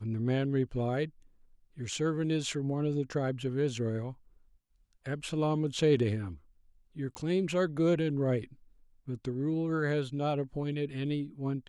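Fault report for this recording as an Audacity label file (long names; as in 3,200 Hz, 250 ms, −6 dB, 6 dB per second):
7.150000	7.150000	click −25 dBFS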